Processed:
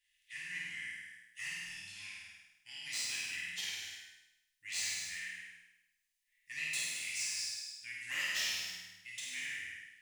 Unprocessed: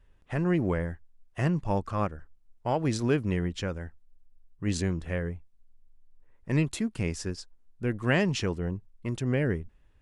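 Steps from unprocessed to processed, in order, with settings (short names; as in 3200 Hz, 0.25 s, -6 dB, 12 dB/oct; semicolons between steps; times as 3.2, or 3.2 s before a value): elliptic high-pass 1900 Hz, stop band 40 dB; high shelf 3600 Hz +8 dB; soft clip -31 dBFS, distortion -9 dB; on a send: flutter echo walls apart 8.8 m, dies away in 0.91 s; on the sum: non-linear reverb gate 0.39 s falling, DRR -5.5 dB; gain -6 dB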